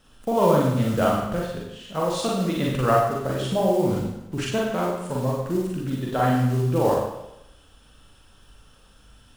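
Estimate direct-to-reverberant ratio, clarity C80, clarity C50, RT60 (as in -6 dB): -3.5 dB, 3.5 dB, 0.5 dB, 0.90 s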